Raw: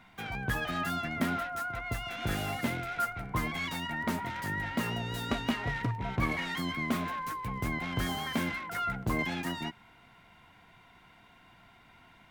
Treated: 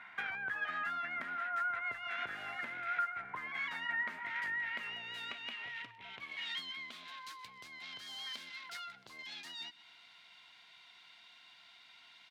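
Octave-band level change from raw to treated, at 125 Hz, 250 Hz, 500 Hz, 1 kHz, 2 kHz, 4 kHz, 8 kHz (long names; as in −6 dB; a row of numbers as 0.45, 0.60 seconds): −29.5, −26.0, −16.0, −6.5, −2.5, −4.0, −13.5 decibels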